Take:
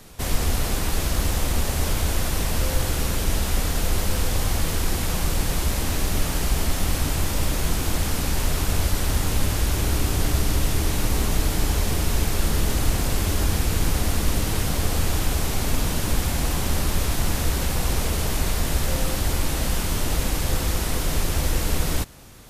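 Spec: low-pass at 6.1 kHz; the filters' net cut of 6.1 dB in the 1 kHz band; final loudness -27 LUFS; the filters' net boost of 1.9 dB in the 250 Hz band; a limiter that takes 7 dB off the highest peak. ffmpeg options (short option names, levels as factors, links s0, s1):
-af "lowpass=6100,equalizer=f=250:t=o:g=3,equalizer=f=1000:t=o:g=-8.5,volume=1.06,alimiter=limit=0.188:level=0:latency=1"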